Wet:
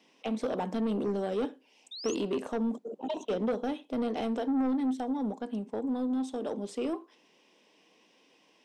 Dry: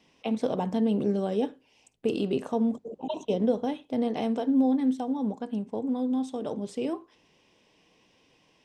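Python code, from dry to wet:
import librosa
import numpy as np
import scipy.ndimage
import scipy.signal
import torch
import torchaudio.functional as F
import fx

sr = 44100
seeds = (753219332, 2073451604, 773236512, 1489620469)

y = scipy.signal.sosfilt(scipy.signal.butter(4, 210.0, 'highpass', fs=sr, output='sos'), x)
y = 10.0 ** (-24.5 / 20.0) * np.tanh(y / 10.0 ** (-24.5 / 20.0))
y = fx.spec_paint(y, sr, seeds[0], shape='rise', start_s=1.91, length_s=0.24, low_hz=3500.0, high_hz=7100.0, level_db=-42.0)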